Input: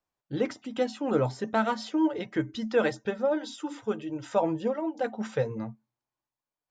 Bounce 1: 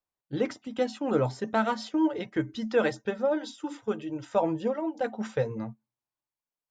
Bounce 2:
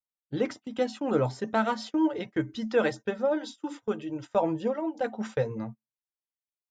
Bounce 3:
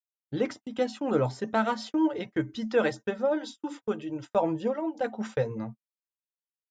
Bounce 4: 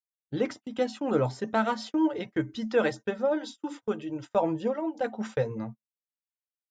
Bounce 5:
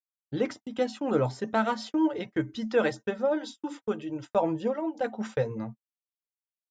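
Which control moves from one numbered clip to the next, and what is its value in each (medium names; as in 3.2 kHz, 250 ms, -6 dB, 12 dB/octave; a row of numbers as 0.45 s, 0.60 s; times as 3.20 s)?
gate, range: -6 dB, -21 dB, -45 dB, -33 dB, -58 dB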